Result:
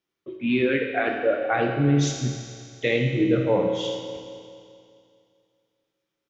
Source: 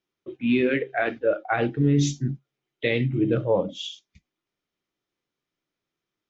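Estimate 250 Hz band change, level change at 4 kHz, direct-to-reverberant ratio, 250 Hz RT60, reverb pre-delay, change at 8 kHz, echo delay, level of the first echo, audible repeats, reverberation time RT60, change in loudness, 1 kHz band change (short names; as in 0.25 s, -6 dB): +0.5 dB, +2.0 dB, 2.0 dB, 2.4 s, 7 ms, n/a, 78 ms, -12.0 dB, 1, 2.4 s, +0.5 dB, +2.5 dB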